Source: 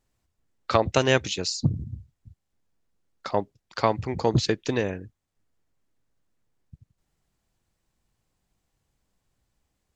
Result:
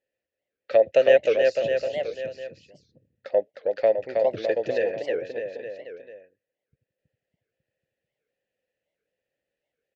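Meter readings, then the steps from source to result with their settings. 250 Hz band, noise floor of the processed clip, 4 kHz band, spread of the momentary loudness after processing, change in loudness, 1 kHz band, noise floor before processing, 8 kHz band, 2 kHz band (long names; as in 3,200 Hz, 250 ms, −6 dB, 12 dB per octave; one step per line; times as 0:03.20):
−9.5 dB, below −85 dBFS, −8.0 dB, 19 LU, +2.0 dB, −6.0 dB, −79 dBFS, below −15 dB, −0.5 dB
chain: dynamic equaliser 650 Hz, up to +8 dB, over −39 dBFS, Q 3.5
formant filter e
bouncing-ball delay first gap 320 ms, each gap 0.9×, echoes 5
wow of a warped record 78 rpm, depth 250 cents
level +7 dB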